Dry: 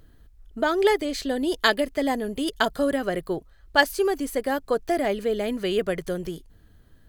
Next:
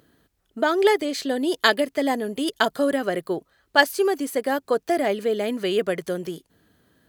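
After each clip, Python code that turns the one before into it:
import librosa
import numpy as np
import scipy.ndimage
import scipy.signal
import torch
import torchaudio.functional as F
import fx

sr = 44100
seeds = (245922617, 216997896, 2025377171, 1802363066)

y = scipy.signal.sosfilt(scipy.signal.butter(2, 180.0, 'highpass', fs=sr, output='sos'), x)
y = y * 10.0 ** (2.0 / 20.0)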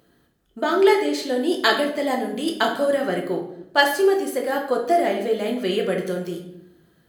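y = fx.room_shoebox(x, sr, seeds[0], volume_m3=180.0, walls='mixed', distance_m=0.9)
y = y * 10.0 ** (-2.0 / 20.0)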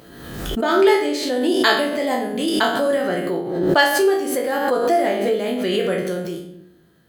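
y = fx.spec_trails(x, sr, decay_s=0.45)
y = fx.pre_swell(y, sr, db_per_s=45.0)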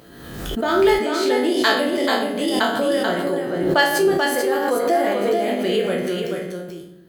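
y = x + 10.0 ** (-5.0 / 20.0) * np.pad(x, (int(436 * sr / 1000.0), 0))[:len(x)]
y = y * 10.0 ** (-1.5 / 20.0)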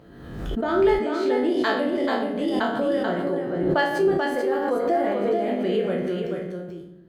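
y = fx.lowpass(x, sr, hz=1500.0, slope=6)
y = fx.low_shelf(y, sr, hz=190.0, db=5.0)
y = y * 10.0 ** (-3.5 / 20.0)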